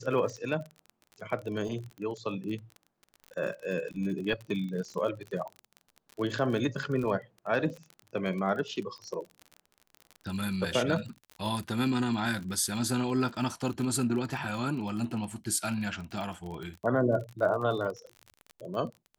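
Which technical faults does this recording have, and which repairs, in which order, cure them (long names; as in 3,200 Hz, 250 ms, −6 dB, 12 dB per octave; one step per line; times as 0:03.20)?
surface crackle 37 per second −36 dBFS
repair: click removal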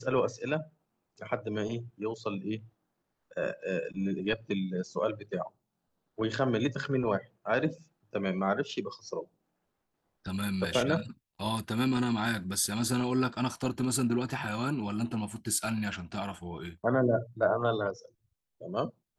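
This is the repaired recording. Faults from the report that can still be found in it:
none of them is left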